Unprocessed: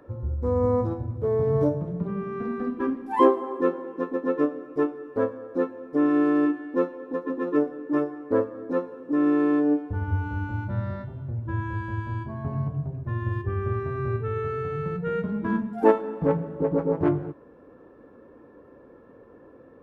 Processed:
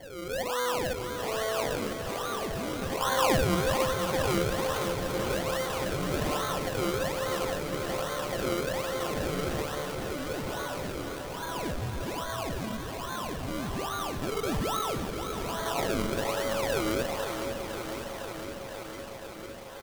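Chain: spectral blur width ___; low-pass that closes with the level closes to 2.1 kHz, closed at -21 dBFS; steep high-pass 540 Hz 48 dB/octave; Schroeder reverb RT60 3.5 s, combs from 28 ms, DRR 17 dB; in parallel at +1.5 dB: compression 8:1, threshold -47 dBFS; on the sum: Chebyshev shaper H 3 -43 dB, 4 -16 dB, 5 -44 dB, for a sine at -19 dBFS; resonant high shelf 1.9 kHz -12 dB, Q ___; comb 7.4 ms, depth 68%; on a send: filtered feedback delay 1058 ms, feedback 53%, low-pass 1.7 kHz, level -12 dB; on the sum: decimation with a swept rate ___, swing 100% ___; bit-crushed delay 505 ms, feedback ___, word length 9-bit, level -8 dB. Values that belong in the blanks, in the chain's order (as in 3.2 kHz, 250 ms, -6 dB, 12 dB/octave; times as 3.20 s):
379 ms, 1.5, 34×, 1.2 Hz, 80%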